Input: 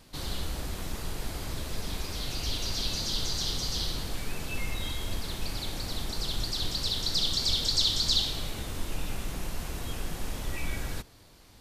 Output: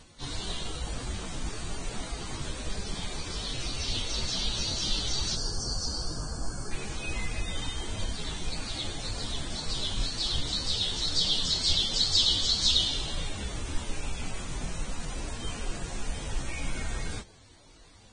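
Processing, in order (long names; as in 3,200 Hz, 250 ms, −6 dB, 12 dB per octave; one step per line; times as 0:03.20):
time stretch by phase vocoder 1.5×
gain on a spectral selection 0:05.14–0:06.45, 1,800–4,400 Hz −19 dB
wrong playback speed 25 fps video run at 24 fps
level +3 dB
Ogg Vorbis 16 kbit/s 22,050 Hz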